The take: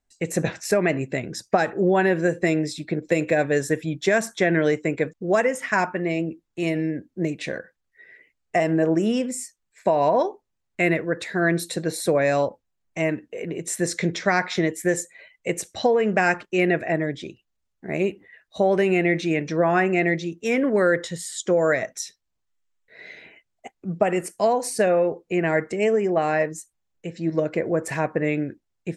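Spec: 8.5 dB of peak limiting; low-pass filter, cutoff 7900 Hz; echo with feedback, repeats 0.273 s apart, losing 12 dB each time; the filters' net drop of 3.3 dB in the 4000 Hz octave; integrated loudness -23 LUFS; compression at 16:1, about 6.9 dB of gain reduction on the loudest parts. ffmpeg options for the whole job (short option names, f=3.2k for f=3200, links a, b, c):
-af "lowpass=7.9k,equalizer=f=4k:t=o:g=-4,acompressor=threshold=-22dB:ratio=16,alimiter=limit=-18.5dB:level=0:latency=1,aecho=1:1:273|546|819:0.251|0.0628|0.0157,volume=7dB"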